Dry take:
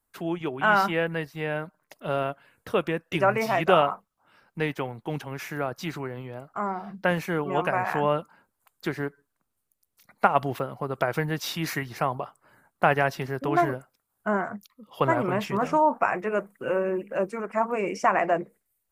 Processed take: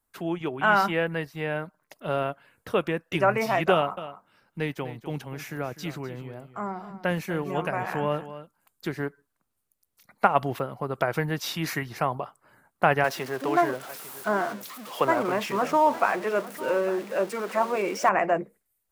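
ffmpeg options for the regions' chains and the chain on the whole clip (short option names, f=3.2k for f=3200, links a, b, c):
-filter_complex "[0:a]asettb=1/sr,asplit=3[a][b][c];[a]atrim=end=3.724[d];[b]atrim=start=3.72:end=8.99,asetpts=PTS-STARTPTS,afade=t=in:d=0.004:c=qsin,afade=t=out:st=5.266:d=0.004:c=qsin,equalizer=f=1.1k:t=o:w=2.7:g=-4.5,aecho=1:1:251:0.211,atrim=end_sample=232407[e];[c]atrim=start=8.986[f];[d][e]acrossfade=d=0.004:c1=hsin:c2=qsin[g];[g][f]acrossfade=d=0.004:c1=qsin:c2=hsin,asettb=1/sr,asplit=3[h][i][j];[h]atrim=end=13.044[k];[i]atrim=start=13.04:end=18.09,asetpts=PTS-STARTPTS,afade=t=in:d=0.004:c=qsin,afade=t=out:st=5.046:d=0.004:c=qsin,aeval=exprs='val(0)+0.5*0.0178*sgn(val(0))':c=same,highpass=250,aecho=1:1:852:0.141,atrim=end_sample=222705[l];[j]atrim=start=18.086[m];[k][l]acrossfade=d=0.004:c1=hsin:c2=qsin[n];[n][m]acrossfade=d=0.004:c1=qsin:c2=hsin"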